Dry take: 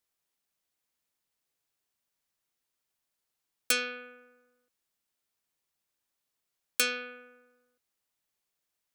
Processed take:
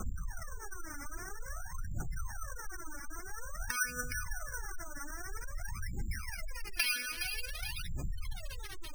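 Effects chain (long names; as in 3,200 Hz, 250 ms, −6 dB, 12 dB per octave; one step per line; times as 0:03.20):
background noise pink −53 dBFS
low-pass filter sweep 1,500 Hz → 5,500 Hz, 0:05.13–0:08.62
gain into a clipping stage and back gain 24 dB
downward compressor 5 to 1, threshold −44 dBFS, peak gain reduction 15.5 dB
on a send: feedback echo with a high-pass in the loop 416 ms, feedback 52%, high-pass 370 Hz, level −6.5 dB
on the sum: phase shifter 0.5 Hz, delay 3.6 ms, feedback 76%
high-frequency loss of the air 69 metres
gate on every frequency bin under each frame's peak −15 dB strong
bad sample-rate conversion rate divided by 6×, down none, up hold
octave-band graphic EQ 250/500/1,000/8,000 Hz −5/−8/−6/+4 dB
level +10 dB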